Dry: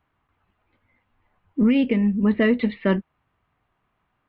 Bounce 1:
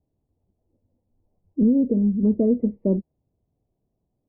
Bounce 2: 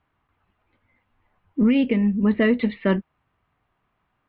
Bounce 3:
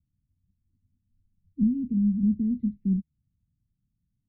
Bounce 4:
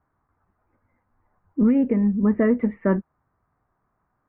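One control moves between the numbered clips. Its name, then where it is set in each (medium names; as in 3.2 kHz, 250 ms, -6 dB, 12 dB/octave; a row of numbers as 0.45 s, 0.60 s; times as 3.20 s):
inverse Chebyshev low-pass, stop band from: 1.5 kHz, 11 kHz, 540 Hz, 4.1 kHz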